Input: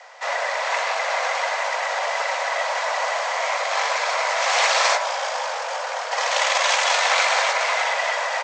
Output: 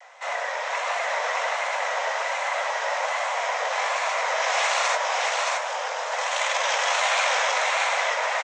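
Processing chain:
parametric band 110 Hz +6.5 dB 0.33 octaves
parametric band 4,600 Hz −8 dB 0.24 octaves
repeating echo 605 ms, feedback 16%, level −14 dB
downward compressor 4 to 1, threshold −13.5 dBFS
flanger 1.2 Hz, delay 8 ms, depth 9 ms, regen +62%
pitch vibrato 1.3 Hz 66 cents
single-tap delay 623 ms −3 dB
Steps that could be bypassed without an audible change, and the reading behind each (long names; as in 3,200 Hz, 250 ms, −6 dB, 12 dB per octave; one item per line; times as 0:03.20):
parametric band 110 Hz: nothing at its input below 400 Hz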